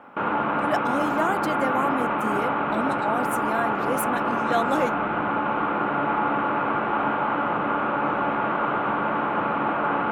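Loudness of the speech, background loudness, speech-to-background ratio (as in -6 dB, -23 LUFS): -29.0 LUFS, -24.5 LUFS, -4.5 dB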